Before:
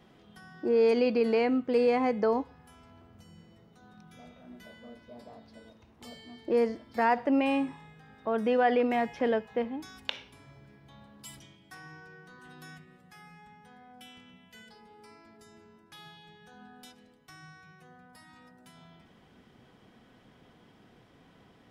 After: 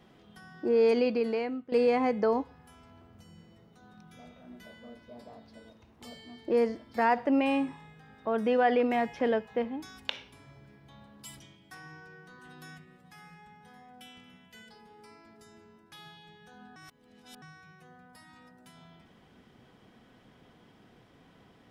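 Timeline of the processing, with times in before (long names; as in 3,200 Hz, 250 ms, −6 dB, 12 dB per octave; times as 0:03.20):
0:00.95–0:01.72: fade out, to −14.5 dB
0:12.48–0:13.25: delay throw 560 ms, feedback 65%, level −15 dB
0:16.76–0:17.42: reverse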